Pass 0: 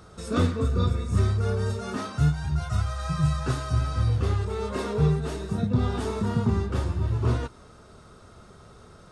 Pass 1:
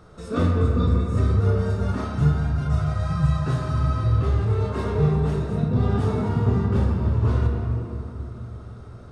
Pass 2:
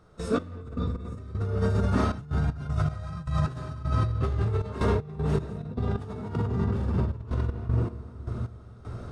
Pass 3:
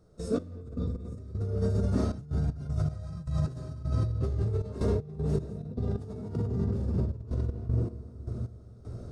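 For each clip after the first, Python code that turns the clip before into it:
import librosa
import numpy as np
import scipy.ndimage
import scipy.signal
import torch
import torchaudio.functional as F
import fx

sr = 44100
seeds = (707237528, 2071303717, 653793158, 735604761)

y1 = fx.high_shelf(x, sr, hz=3100.0, db=-9.0)
y1 = fx.room_shoebox(y1, sr, seeds[0], volume_m3=140.0, walls='hard', distance_m=0.41)
y2 = fx.over_compress(y1, sr, threshold_db=-25.0, ratio=-1.0)
y2 = fx.step_gate(y2, sr, bpm=78, pattern='.x..x..xxxx.x', floor_db=-12.0, edge_ms=4.5)
y3 = fx.band_shelf(y2, sr, hz=1700.0, db=-11.0, octaves=2.4)
y3 = y3 * 10.0 ** (-2.5 / 20.0)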